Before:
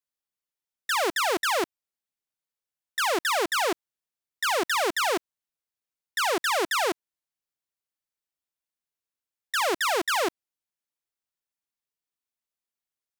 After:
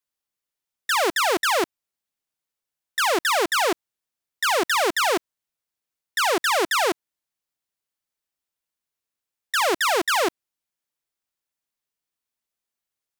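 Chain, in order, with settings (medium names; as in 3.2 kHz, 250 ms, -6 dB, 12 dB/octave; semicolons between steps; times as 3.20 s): trim +4 dB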